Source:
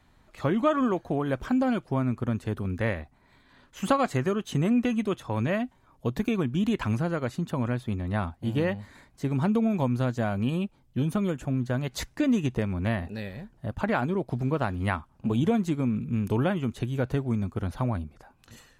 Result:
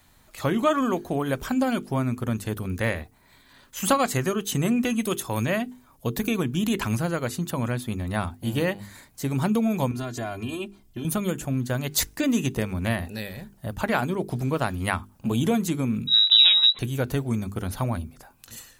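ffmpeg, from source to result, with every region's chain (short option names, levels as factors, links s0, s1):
-filter_complex "[0:a]asettb=1/sr,asplit=3[s0][s1][s2];[s0]atrim=end=5.014[s3];[s1]atrim=start=5.01:end=5.45,asetpts=PTS-STARTPTS,afade=t=in:d=0.004:c=qsin,afade=t=out:st=0.436:d=0.004:c=qsin,highshelf=f=6800:g=10,asoftclip=type=hard:threshold=0.133[s4];[s2]atrim=start=5.446[s5];[s3][s4]acrossfade=d=0.004:c1=hsin:c2=qsin[s6];[s6][s5]acrossfade=d=0.004:c1=qsin:c2=hsin,asettb=1/sr,asplit=3[s7][s8][s9];[s7]atrim=end=9.914[s10];[s8]atrim=start=9.91:end=11.05,asetpts=PTS-STARTPTS,afade=t=in:d=0.004:c=qsin,afade=t=out:st=1.136:d=0.004:c=qsin,highshelf=f=9500:g=-10.5,aecho=1:1:2.9:0.9,atrim=end_sample=50274,acompressor=threshold=0.0355:ratio=6:attack=3.2:release=140:knee=1:detection=peak[s11];[s9]atrim=start=11.046[s12];[s10][s11]acrossfade=d=0.004:c1=hsin:c2=qsin[s13];[s13][s12]acrossfade=d=0.004:c1=qsin:c2=hsin,asettb=1/sr,asplit=3[s14][s15][s16];[s14]atrim=end=16.074[s17];[s15]atrim=start=16.07:end=16.79,asetpts=PTS-STARTPTS,afade=t=in:d=0.004:c=qsin,afade=t=out:st=0.716:d=0.004:c=qsin,asubboost=boost=7:cutoff=210,lowpass=f=3400:t=q:w=0.5098,lowpass=f=3400:t=q:w=0.6013,lowpass=f=3400:t=q:w=0.9,lowpass=f=3400:t=q:w=2.563,afreqshift=-4000[s18];[s16]atrim=start=16.786[s19];[s17][s18]acrossfade=d=0.004:c1=hsin:c2=qsin[s20];[s20][s19]acrossfade=d=0.004:c1=qsin:c2=hsin,aemphasis=mode=production:type=75fm,bandreject=f=50:t=h:w=6,bandreject=f=100:t=h:w=6,bandreject=f=150:t=h:w=6,bandreject=f=200:t=h:w=6,bandreject=f=250:t=h:w=6,bandreject=f=300:t=h:w=6,bandreject=f=350:t=h:w=6,bandreject=f=400:t=h:w=6,bandreject=f=450:t=h:w=6,volume=1.33"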